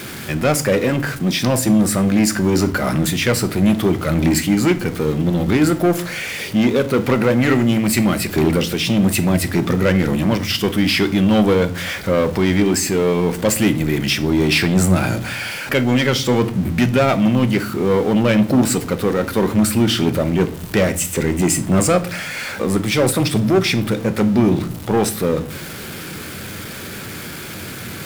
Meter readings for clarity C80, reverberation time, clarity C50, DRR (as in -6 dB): 21.5 dB, 0.45 s, 17.0 dB, 10.0 dB